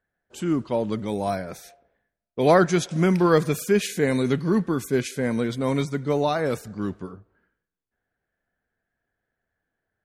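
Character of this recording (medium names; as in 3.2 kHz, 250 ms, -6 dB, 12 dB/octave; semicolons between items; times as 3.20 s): noise floor -84 dBFS; spectral tilt -6.0 dB/octave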